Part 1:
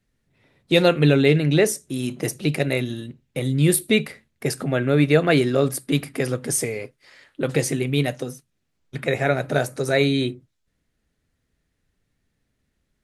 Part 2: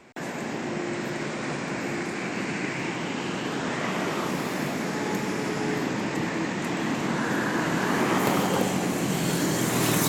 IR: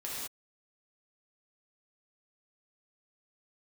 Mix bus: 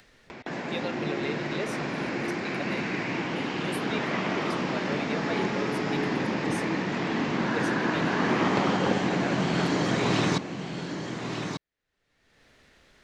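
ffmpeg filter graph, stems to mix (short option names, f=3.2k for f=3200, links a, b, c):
-filter_complex "[0:a]acrossover=split=390 6100:gain=0.2 1 0.158[a][b][c];[a][b][c]amix=inputs=3:normalize=0,alimiter=limit=-12.5dB:level=0:latency=1:release=85,volume=-11.5dB[d];[1:a]lowpass=f=5.3k:w=0.5412,lowpass=f=5.3k:w=1.3066,adelay=300,volume=-1dB,asplit=2[e][f];[f]volume=-7.5dB,aecho=0:1:1191:1[g];[d][e][g]amix=inputs=3:normalize=0,acompressor=mode=upward:threshold=-33dB:ratio=2.5"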